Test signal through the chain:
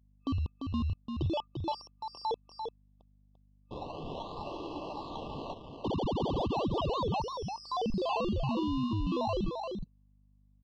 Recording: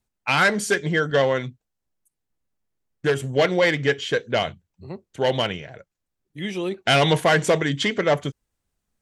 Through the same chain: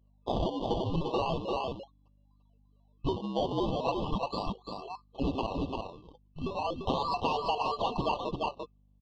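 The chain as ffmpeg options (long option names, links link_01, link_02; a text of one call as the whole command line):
ffmpeg -i in.wav -af "afftfilt=real='real(if(lt(b,736),b+184*(1-2*mod(floor(b/184),2)),b),0)':imag='imag(if(lt(b,736),b+184*(1-2*mod(floor(b/184),2)),b),0)':win_size=2048:overlap=0.75,acrusher=samples=23:mix=1:aa=0.000001:lfo=1:lforange=23:lforate=0.37,lowpass=frequency=3900:width=0.5412,lowpass=frequency=3900:width=1.3066,afftfilt=real='re*(1-between(b*sr/4096,1200,2600))':imag='im*(1-between(b*sr/4096,1200,2600))':win_size=4096:overlap=0.75,aecho=1:1:344:0.501,acompressor=threshold=-20dB:ratio=8,aeval=exprs='val(0)+0.00141*(sin(2*PI*50*n/s)+sin(2*PI*2*50*n/s)/2+sin(2*PI*3*50*n/s)/3+sin(2*PI*4*50*n/s)/4+sin(2*PI*5*50*n/s)/5)':channel_layout=same,volume=-6dB" out.wav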